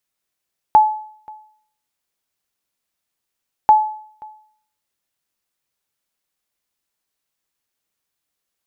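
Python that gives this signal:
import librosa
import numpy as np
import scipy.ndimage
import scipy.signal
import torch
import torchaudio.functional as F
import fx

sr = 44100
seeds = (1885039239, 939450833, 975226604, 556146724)

y = fx.sonar_ping(sr, hz=859.0, decay_s=0.58, every_s=2.94, pings=2, echo_s=0.53, echo_db=-26.0, level_db=-3.5)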